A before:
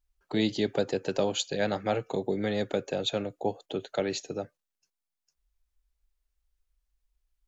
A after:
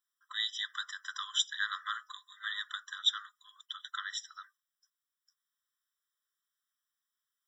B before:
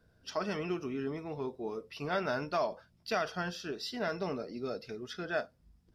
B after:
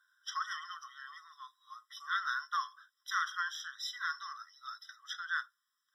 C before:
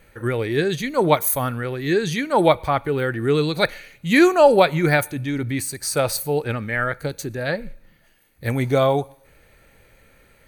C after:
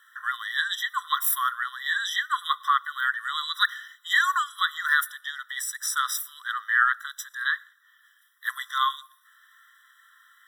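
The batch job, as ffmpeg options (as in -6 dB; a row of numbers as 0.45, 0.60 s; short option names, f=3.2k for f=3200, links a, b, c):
-af "alimiter=level_in=7dB:limit=-1dB:release=50:level=0:latency=1,afftfilt=real='re*eq(mod(floor(b*sr/1024/1000),2),1)':imag='im*eq(mod(floor(b*sr/1024/1000),2),1)':win_size=1024:overlap=0.75,volume=-3dB"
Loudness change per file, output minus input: -4.5, -1.5, -5.5 LU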